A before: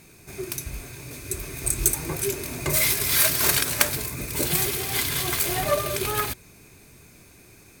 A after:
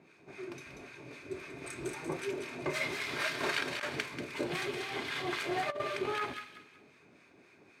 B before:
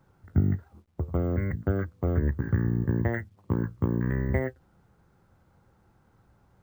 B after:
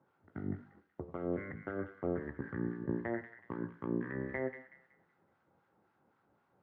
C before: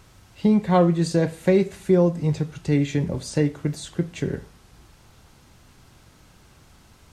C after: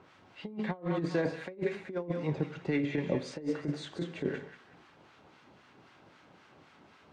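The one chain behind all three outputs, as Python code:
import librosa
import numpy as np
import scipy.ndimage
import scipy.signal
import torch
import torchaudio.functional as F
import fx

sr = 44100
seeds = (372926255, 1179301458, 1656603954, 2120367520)

y = fx.bandpass_edges(x, sr, low_hz=240.0, high_hz=2600.0)
y = fx.harmonic_tremolo(y, sr, hz=3.8, depth_pct=70, crossover_hz=1000.0)
y = fx.echo_wet_highpass(y, sr, ms=187, feedback_pct=32, hz=1900.0, wet_db=-5.5)
y = fx.rev_gated(y, sr, seeds[0], gate_ms=200, shape='falling', drr_db=11.5)
y = fx.over_compress(y, sr, threshold_db=-29.0, ratio=-0.5)
y = y * librosa.db_to_amplitude(-2.5)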